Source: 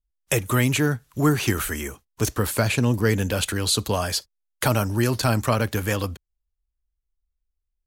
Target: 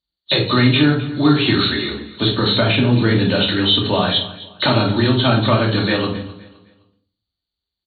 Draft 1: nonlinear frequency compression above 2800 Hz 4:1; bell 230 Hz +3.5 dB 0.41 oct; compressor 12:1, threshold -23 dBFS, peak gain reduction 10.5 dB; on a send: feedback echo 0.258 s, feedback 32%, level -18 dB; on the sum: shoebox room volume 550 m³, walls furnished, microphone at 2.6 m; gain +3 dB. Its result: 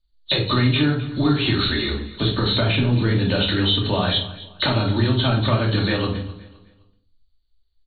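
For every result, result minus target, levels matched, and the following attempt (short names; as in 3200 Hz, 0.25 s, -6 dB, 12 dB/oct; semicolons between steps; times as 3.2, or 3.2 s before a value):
compressor: peak gain reduction +6.5 dB; 125 Hz band +2.5 dB
nonlinear frequency compression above 2800 Hz 4:1; bell 230 Hz +3.5 dB 0.41 oct; compressor 12:1, threshold -16.5 dBFS, peak gain reduction 4.5 dB; on a send: feedback echo 0.258 s, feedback 32%, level -18 dB; on the sum: shoebox room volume 550 m³, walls furnished, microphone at 2.6 m; gain +3 dB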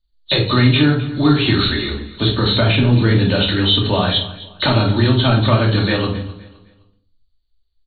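125 Hz band +2.5 dB
nonlinear frequency compression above 2800 Hz 4:1; HPF 130 Hz 12 dB/oct; bell 230 Hz +3.5 dB 0.41 oct; compressor 12:1, threshold -16.5 dBFS, peak gain reduction 4.5 dB; on a send: feedback echo 0.258 s, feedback 32%, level -18 dB; on the sum: shoebox room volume 550 m³, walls furnished, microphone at 2.6 m; gain +3 dB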